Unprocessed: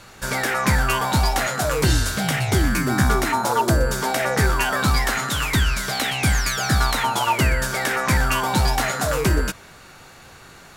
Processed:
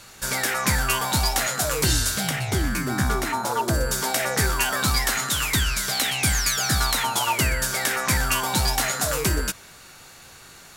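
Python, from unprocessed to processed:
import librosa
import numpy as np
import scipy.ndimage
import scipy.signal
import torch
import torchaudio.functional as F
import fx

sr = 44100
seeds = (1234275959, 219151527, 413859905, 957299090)

y = fx.high_shelf(x, sr, hz=3200.0, db=fx.steps((0.0, 10.5), (2.28, 3.0), (3.73, 10.5)))
y = F.gain(torch.from_numpy(y), -5.0).numpy()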